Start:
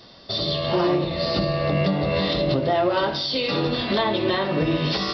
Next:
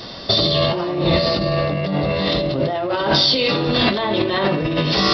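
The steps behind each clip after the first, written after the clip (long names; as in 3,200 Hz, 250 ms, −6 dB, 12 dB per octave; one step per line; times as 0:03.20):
compressor whose output falls as the input rises −28 dBFS, ratio −1
level +9 dB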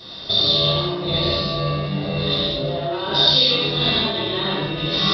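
parametric band 3,700 Hz +11.5 dB 0.24 octaves
reverb whose tail is shaped and stops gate 240 ms flat, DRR −7.5 dB
level −13 dB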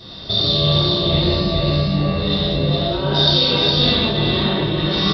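low-shelf EQ 240 Hz +10.5 dB
on a send: single-tap delay 413 ms −3 dB
on the sum: level −1 dB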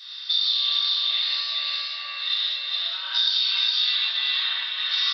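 high-pass filter 1,500 Hz 24 dB per octave
downward compressor, threshold −19 dBFS, peak gain reduction 7.5 dB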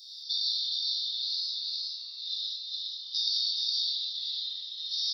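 inverse Chebyshev band-stop filter 350–2,700 Hz, stop band 40 dB
level +3 dB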